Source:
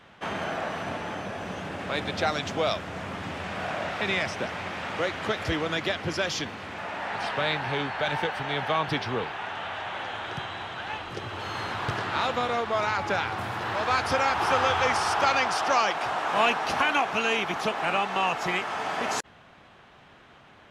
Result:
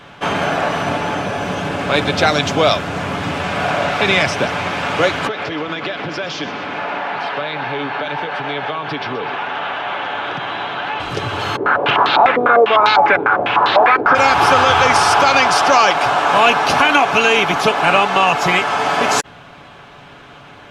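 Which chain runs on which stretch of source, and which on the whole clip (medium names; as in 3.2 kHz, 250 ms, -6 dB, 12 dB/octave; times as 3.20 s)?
5.27–11.00 s: compression 12:1, threshold -31 dBFS + band-pass 190–3600 Hz + two-band feedback delay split 1.7 kHz, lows 187 ms, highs 125 ms, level -13 dB
11.56–14.15 s: high-pass 240 Hz + step-sequenced low-pass 10 Hz 400–3900 Hz
whole clip: band-stop 1.9 kHz, Q 13; comb 7 ms, depth 33%; loudness maximiser +14 dB; trim -1 dB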